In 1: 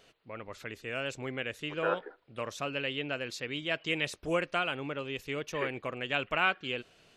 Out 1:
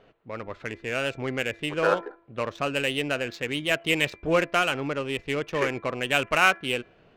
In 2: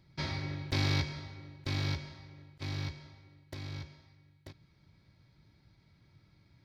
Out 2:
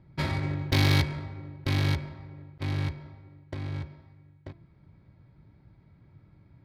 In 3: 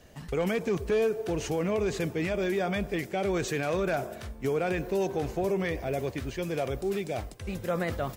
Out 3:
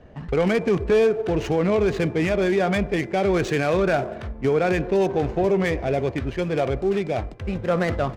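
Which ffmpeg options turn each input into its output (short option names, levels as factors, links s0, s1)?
-af "adynamicsmooth=sensitivity=7.5:basefreq=1600,bandreject=f=337.7:t=h:w=4,bandreject=f=675.4:t=h:w=4,bandreject=f=1013.1:t=h:w=4,bandreject=f=1350.8:t=h:w=4,bandreject=f=1688.5:t=h:w=4,bandreject=f=2026.2:t=h:w=4,bandreject=f=2363.9:t=h:w=4,volume=2.51"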